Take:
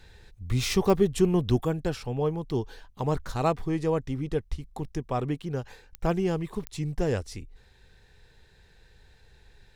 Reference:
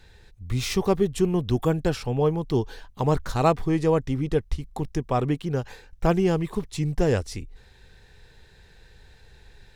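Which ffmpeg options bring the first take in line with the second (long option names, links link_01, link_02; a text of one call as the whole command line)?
ffmpeg -i in.wav -af "adeclick=threshold=4,asetnsamples=nb_out_samples=441:pad=0,asendcmd='1.6 volume volume 5dB',volume=0dB" out.wav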